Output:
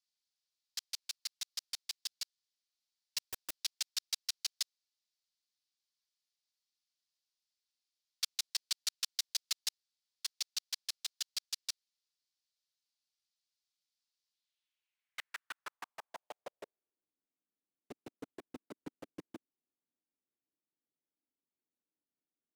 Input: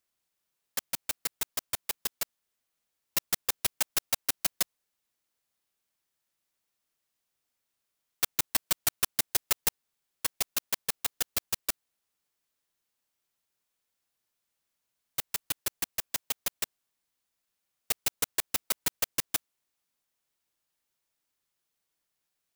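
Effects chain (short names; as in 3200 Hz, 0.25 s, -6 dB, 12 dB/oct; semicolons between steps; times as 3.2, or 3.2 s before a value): band-pass sweep 4600 Hz -> 280 Hz, 14.28–17.23; 3.18–3.59 wrapped overs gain 33.5 dB; gain +1 dB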